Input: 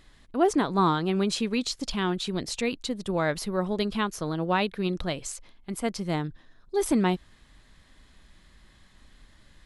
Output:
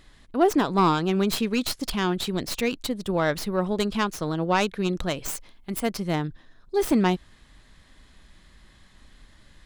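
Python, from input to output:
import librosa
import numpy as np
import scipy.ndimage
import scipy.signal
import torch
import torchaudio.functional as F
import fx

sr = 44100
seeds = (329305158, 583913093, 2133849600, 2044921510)

y = fx.tracing_dist(x, sr, depth_ms=0.14)
y = fx.high_shelf(y, sr, hz=9400.0, db=8.5, at=(5.28, 5.89))
y = y * librosa.db_to_amplitude(2.5)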